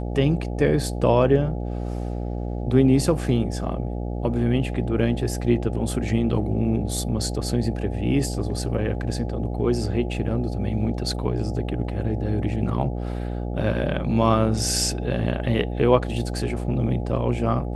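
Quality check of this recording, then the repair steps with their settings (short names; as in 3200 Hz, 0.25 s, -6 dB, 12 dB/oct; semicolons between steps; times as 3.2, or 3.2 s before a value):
buzz 60 Hz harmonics 14 -28 dBFS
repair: de-hum 60 Hz, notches 14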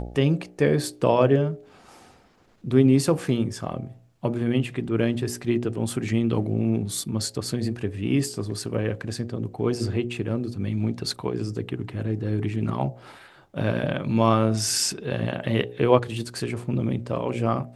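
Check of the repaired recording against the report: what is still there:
none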